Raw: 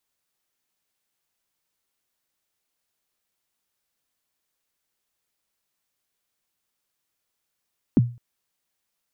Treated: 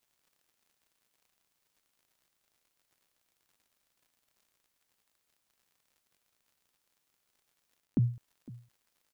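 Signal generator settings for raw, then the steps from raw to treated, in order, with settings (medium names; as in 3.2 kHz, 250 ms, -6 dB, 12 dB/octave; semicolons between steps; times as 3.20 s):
kick drum length 0.21 s, from 320 Hz, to 120 Hz, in 28 ms, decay 0.34 s, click off, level -9.5 dB
reverse; compression, threshold -25 dBFS; reverse; crackle 83 per s -57 dBFS; echo from a far wall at 87 m, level -20 dB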